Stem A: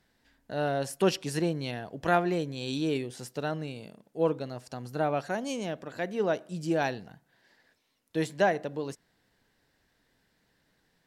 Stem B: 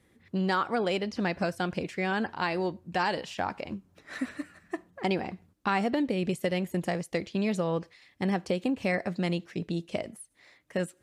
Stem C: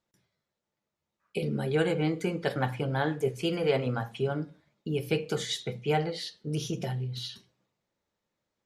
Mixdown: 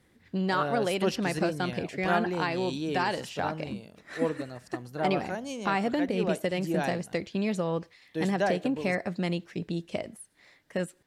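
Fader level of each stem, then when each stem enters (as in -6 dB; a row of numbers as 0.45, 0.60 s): -3.0 dB, -0.5 dB, off; 0.00 s, 0.00 s, off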